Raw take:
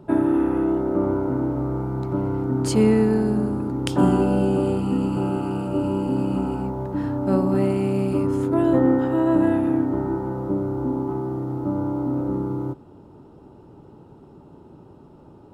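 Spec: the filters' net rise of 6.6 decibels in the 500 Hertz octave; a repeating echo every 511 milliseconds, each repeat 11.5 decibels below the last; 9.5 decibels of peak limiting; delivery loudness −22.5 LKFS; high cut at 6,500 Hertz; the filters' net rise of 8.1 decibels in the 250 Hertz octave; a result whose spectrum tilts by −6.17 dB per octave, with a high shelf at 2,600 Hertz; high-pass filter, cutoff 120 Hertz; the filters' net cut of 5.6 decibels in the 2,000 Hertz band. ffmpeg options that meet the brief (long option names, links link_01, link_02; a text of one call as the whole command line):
ffmpeg -i in.wav -af "highpass=120,lowpass=6500,equalizer=frequency=250:width_type=o:gain=9,equalizer=frequency=500:width_type=o:gain=5.5,equalizer=frequency=2000:width_type=o:gain=-5.5,highshelf=frequency=2600:gain=-6.5,alimiter=limit=-9dB:level=0:latency=1,aecho=1:1:511|1022|1533:0.266|0.0718|0.0194,volume=-5dB" out.wav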